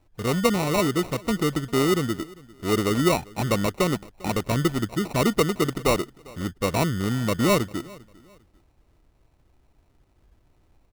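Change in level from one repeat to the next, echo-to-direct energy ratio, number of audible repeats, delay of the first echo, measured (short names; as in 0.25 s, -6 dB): -10.5 dB, -22.5 dB, 2, 0.399 s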